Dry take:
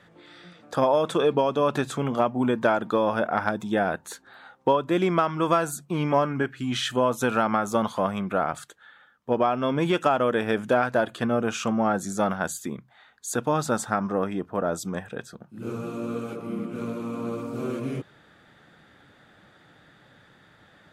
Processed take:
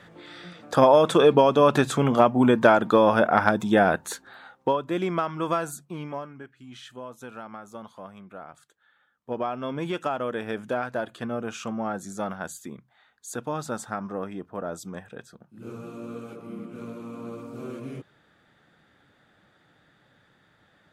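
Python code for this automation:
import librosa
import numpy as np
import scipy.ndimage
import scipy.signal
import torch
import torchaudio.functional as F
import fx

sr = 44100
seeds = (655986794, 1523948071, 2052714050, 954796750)

y = fx.gain(x, sr, db=fx.line((4.11, 5.0), (4.82, -4.0), (5.72, -4.0), (6.39, -17.0), (8.56, -17.0), (9.38, -6.5)))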